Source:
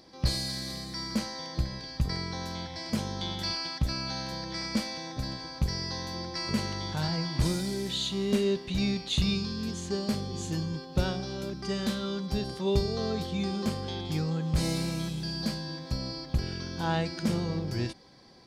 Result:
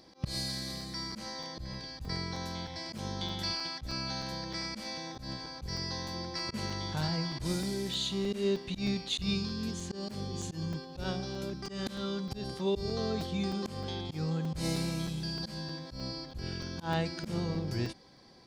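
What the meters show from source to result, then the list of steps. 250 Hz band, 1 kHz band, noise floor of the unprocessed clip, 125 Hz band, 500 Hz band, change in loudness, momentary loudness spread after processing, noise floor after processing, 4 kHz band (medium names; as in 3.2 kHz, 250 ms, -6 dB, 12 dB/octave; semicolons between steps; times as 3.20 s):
-4.5 dB, -3.0 dB, -44 dBFS, -4.5 dB, -3.5 dB, -4.0 dB, 7 LU, -49 dBFS, -3.0 dB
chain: slow attack 127 ms; crackling interface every 0.31 s, samples 128, zero, from 0.81 s; trim -2 dB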